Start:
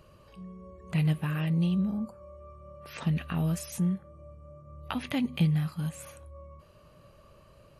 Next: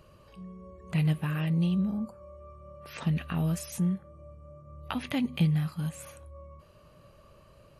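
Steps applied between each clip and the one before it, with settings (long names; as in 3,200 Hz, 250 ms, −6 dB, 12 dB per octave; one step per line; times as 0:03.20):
no processing that can be heard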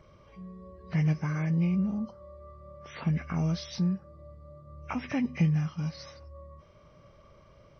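hearing-aid frequency compression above 1,400 Hz 1.5 to 1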